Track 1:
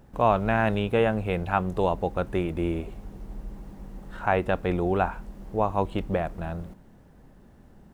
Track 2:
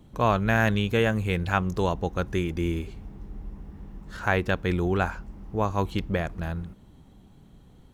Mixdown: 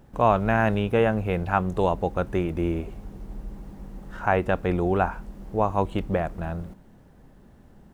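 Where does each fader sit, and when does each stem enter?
+0.5, -14.5 dB; 0.00, 0.00 s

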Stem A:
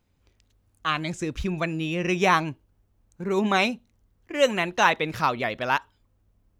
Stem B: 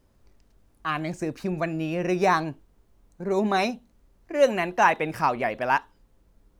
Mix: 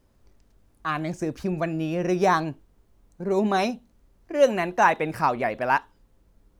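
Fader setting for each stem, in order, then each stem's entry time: -15.5, 0.0 dB; 0.00, 0.00 s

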